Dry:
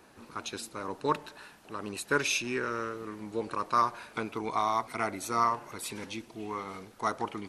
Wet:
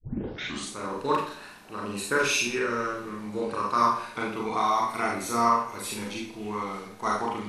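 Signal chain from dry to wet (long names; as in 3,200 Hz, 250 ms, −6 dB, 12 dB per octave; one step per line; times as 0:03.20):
turntable start at the beginning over 0.71 s
four-comb reverb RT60 0.46 s, combs from 30 ms, DRR −3 dB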